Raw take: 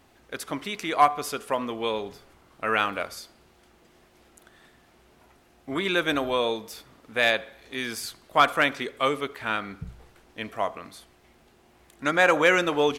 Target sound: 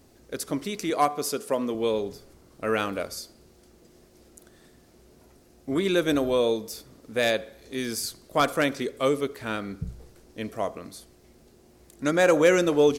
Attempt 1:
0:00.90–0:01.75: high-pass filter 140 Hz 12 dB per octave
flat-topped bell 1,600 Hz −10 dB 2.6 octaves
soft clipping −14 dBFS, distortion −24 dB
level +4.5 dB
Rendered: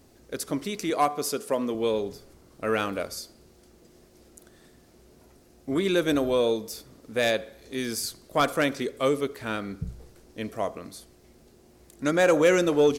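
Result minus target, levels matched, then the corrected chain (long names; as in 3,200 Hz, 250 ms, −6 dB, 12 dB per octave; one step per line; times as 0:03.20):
soft clipping: distortion +14 dB
0:00.90–0:01.75: high-pass filter 140 Hz 12 dB per octave
flat-topped bell 1,600 Hz −10 dB 2.6 octaves
soft clipping −6 dBFS, distortion −38 dB
level +4.5 dB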